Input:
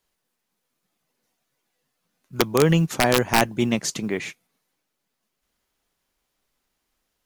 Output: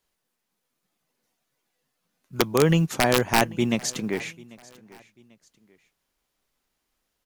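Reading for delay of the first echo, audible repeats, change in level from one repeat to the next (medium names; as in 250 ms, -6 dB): 792 ms, 2, -9.0 dB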